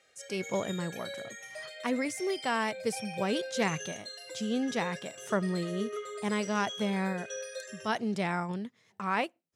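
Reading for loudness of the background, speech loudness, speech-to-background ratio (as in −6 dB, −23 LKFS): −41.5 LKFS, −33.5 LKFS, 8.0 dB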